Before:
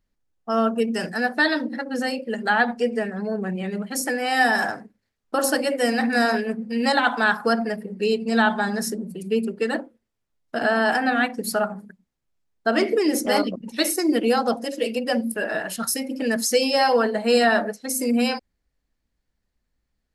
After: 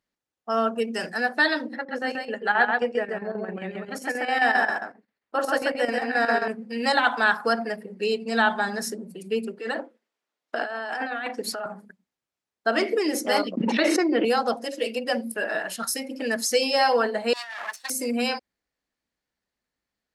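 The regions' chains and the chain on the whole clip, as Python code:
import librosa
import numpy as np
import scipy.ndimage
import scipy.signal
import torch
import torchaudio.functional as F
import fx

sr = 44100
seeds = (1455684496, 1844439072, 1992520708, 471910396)

y = fx.chain(x, sr, fx.bass_treble(bass_db=-3, treble_db=-11),
    fx.echo_single(ms=134, db=-3.5),
    fx.chopper(hz=7.5, depth_pct=60, duty_pct=75), at=(1.75, 6.48))
y = fx.chain(y, sr, fx.highpass(hz=280.0, slope=12),
    fx.high_shelf(hz=8900.0, db=-11.5),
    fx.over_compress(threshold_db=-28.0, ratio=-1.0), at=(9.59, 11.66))
y = fx.chain(y, sr, fx.bandpass_edges(low_hz=210.0, high_hz=2500.0),
    fx.env_flatten(amount_pct=100), at=(13.57, 14.25))
y = fx.chain(y, sr, fx.lower_of_two(delay_ms=1.1),
    fx.over_compress(threshold_db=-29.0, ratio=-1.0),
    fx.highpass(hz=1200.0, slope=12), at=(17.33, 17.9))
y = fx.highpass(y, sr, hz=450.0, slope=6)
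y = fx.high_shelf(y, sr, hz=10000.0, db=-7.5)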